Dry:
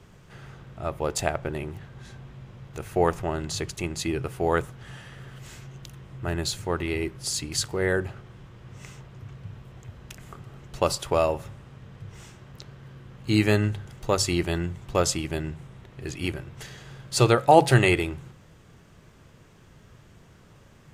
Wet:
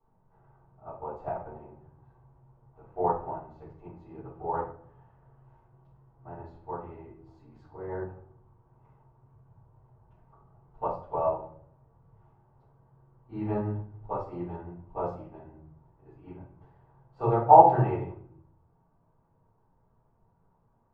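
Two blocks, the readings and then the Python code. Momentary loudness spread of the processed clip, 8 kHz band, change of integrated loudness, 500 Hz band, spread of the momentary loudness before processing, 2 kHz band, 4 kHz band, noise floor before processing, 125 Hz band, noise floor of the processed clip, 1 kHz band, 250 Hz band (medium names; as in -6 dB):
23 LU, under -40 dB, -2.0 dB, -5.0 dB, 23 LU, -21.0 dB, under -35 dB, -53 dBFS, -8.5 dB, -68 dBFS, +3.0 dB, -9.5 dB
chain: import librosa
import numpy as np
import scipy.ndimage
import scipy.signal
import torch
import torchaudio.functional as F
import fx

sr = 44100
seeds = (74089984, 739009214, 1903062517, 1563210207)

y = fx.lowpass_res(x, sr, hz=890.0, q=4.9)
y = fx.room_shoebox(y, sr, seeds[0], volume_m3=120.0, walls='mixed', distance_m=3.6)
y = fx.upward_expand(y, sr, threshold_db=-19.0, expansion=1.5)
y = F.gain(torch.from_numpy(y), -18.0).numpy()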